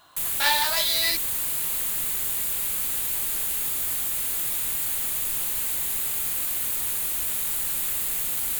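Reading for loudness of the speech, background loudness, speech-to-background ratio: -23.5 LUFS, -23.5 LUFS, 0.0 dB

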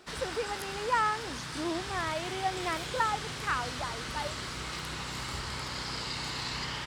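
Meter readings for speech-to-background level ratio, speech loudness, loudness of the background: 2.5 dB, -34.0 LUFS, -36.5 LUFS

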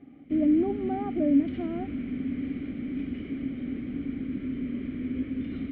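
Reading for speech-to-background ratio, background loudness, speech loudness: 6.0 dB, -33.5 LUFS, -27.5 LUFS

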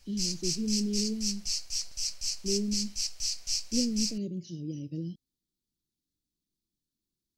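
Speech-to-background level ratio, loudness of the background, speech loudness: -2.5 dB, -32.0 LUFS, -34.5 LUFS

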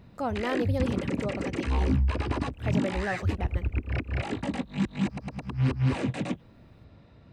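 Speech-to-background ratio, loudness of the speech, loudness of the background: -4.5 dB, -34.5 LUFS, -30.0 LUFS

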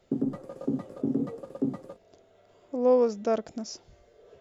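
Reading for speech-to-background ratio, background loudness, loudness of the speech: 5.5 dB, -32.5 LUFS, -27.0 LUFS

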